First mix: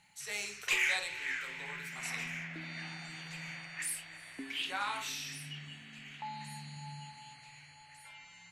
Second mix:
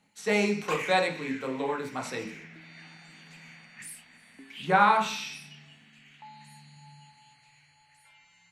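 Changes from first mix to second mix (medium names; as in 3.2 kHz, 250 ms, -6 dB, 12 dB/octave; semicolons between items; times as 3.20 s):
speech: remove differentiator; background -6.0 dB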